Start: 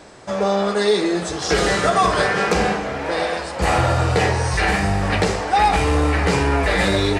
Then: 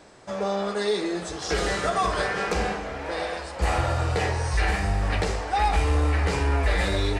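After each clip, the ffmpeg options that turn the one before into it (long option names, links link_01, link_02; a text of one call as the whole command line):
ffmpeg -i in.wav -af "asubboost=boost=6:cutoff=58,volume=-7.5dB" out.wav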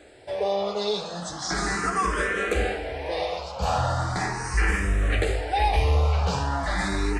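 ffmpeg -i in.wav -filter_complex "[0:a]asplit=2[link_01][link_02];[link_02]afreqshift=0.38[link_03];[link_01][link_03]amix=inputs=2:normalize=1,volume=3dB" out.wav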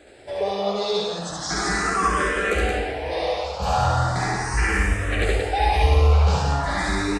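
ffmpeg -i in.wav -af "aecho=1:1:69.97|174.9:0.891|0.631" out.wav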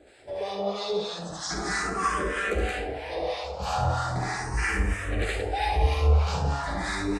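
ffmpeg -i in.wav -filter_complex "[0:a]acrossover=split=840[link_01][link_02];[link_01]aeval=exprs='val(0)*(1-0.7/2+0.7/2*cos(2*PI*3.1*n/s))':channel_layout=same[link_03];[link_02]aeval=exprs='val(0)*(1-0.7/2-0.7/2*cos(2*PI*3.1*n/s))':channel_layout=same[link_04];[link_03][link_04]amix=inputs=2:normalize=0,volume=-2.5dB" out.wav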